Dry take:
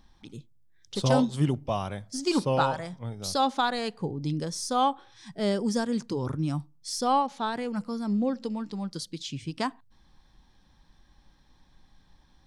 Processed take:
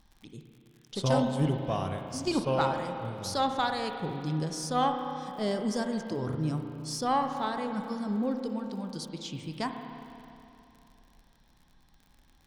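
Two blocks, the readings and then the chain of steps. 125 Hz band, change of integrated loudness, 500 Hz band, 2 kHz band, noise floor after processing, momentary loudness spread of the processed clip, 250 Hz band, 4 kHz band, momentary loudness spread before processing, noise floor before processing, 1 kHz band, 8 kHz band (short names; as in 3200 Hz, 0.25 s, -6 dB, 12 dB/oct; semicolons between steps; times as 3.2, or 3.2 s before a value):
-1.5 dB, -2.5 dB, -1.5 dB, -2.0 dB, -63 dBFS, 11 LU, -2.5 dB, -3.0 dB, 11 LU, -62 dBFS, -2.0 dB, -3.5 dB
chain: added harmonics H 4 -24 dB, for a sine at -11 dBFS; crackle 58/s -43 dBFS; spring tank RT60 2.9 s, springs 32/52 ms, chirp 70 ms, DRR 5 dB; gain -3.5 dB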